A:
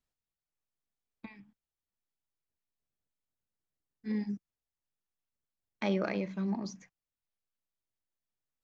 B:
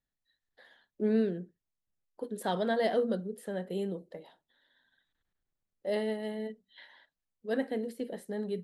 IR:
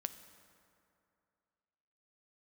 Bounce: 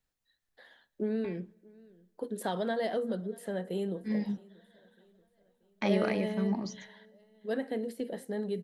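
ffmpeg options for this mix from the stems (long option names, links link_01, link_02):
-filter_complex "[0:a]volume=1dB,asplit=2[link_01][link_02];[link_02]volume=-17.5dB[link_03];[1:a]acompressor=threshold=-30dB:ratio=6,volume=0.5dB,asplit=3[link_04][link_05][link_06];[link_05]volume=-15.5dB[link_07];[link_06]volume=-23dB[link_08];[2:a]atrim=start_sample=2205[link_09];[link_03][link_07]amix=inputs=2:normalize=0[link_10];[link_10][link_09]afir=irnorm=-1:irlink=0[link_11];[link_08]aecho=0:1:633|1266|1899|2532|3165|3798|4431:1|0.47|0.221|0.104|0.0488|0.0229|0.0108[link_12];[link_01][link_04][link_11][link_12]amix=inputs=4:normalize=0"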